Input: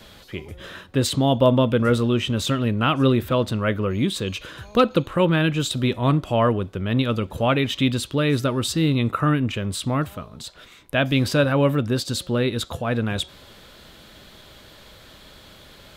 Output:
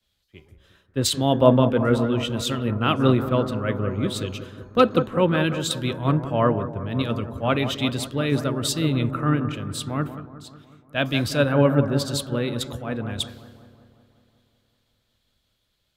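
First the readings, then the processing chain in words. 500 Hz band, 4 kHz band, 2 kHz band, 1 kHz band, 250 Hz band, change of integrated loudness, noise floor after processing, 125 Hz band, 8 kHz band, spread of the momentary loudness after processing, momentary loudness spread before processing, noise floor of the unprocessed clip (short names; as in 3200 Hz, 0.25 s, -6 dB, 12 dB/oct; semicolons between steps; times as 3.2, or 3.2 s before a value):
-0.5 dB, -1.5 dB, -2.5 dB, -1.0 dB, -1.5 dB, -1.0 dB, -72 dBFS, -1.5 dB, +0.5 dB, 11 LU, 11 LU, -48 dBFS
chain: analogue delay 0.183 s, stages 2048, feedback 79%, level -9 dB; three-band expander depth 100%; gain -3 dB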